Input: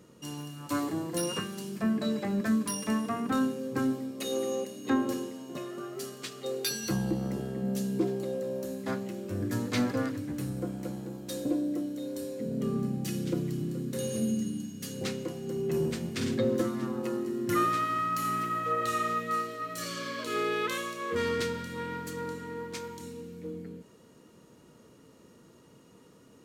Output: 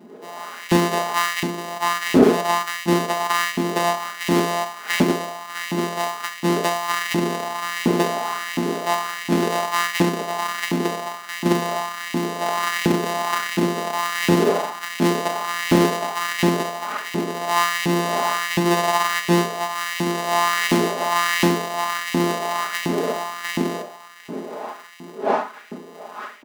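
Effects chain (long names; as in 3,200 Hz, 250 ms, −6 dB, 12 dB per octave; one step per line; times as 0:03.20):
samples sorted by size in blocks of 256 samples
wind on the microphone 560 Hz −44 dBFS
parametric band 260 Hz +11 dB 0.95 octaves
comb filter 4.8 ms, depth 85%
automatic gain control gain up to 16.5 dB
auto-filter high-pass saw up 1.4 Hz 240–2,400 Hz
on a send: ambience of single reflections 33 ms −13 dB, 68 ms −14.5 dB
on the sum: highs frequency-modulated by the lows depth 0.33 ms
level −3 dB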